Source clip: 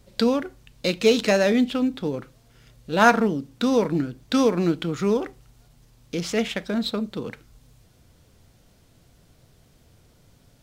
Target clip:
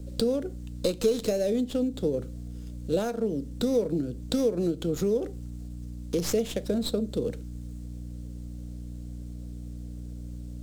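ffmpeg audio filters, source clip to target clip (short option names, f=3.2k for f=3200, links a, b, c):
-filter_complex "[0:a]aeval=exprs='val(0)+0.0141*(sin(2*PI*60*n/s)+sin(2*PI*2*60*n/s)/2+sin(2*PI*3*60*n/s)/3+sin(2*PI*4*60*n/s)/4+sin(2*PI*5*60*n/s)/5)':c=same,acompressor=threshold=-25dB:ratio=10,equalizer=f=500:t=o:w=1:g=9,equalizer=f=1k:t=o:w=1:g=-12,equalizer=f=2k:t=o:w=1:g=-10,equalizer=f=4k:t=o:w=1:g=3,equalizer=f=8k:t=o:w=1:g=11,acrossover=split=150|1100|2200[a][b][c][d];[d]aeval=exprs='max(val(0),0)':c=same[e];[a][b][c][e]amix=inputs=4:normalize=0"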